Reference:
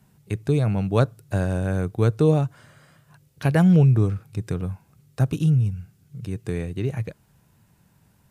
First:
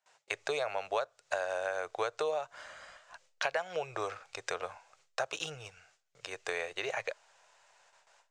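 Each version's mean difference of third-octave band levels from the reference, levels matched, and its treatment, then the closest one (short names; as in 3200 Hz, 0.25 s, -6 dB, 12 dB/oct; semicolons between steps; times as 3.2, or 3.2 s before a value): 14.0 dB: elliptic band-pass 590–7100 Hz, stop band 40 dB; gate with hold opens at -60 dBFS; in parallel at -9 dB: backlash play -46.5 dBFS; on the sum: compressor 10:1, threshold -35 dBFS, peak gain reduction 18 dB; gain +5.5 dB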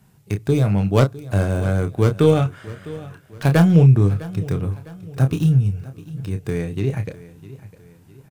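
3.5 dB: tracing distortion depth 0.16 ms; doubler 30 ms -8 dB; spectral gain 2.18–3.34, 1100–3700 Hz +6 dB; on a send: feedback echo 0.655 s, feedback 44%, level -18 dB; on the sum: gain +3 dB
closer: second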